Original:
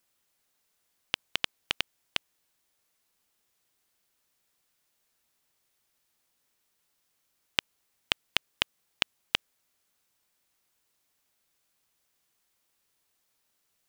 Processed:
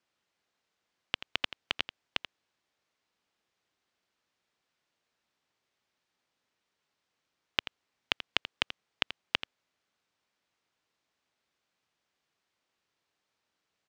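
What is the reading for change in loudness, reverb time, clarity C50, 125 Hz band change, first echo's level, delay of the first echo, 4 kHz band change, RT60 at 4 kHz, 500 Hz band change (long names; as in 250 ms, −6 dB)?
−2.0 dB, no reverb audible, no reverb audible, −2.5 dB, −12.5 dB, 84 ms, −2.5 dB, no reverb audible, −0.5 dB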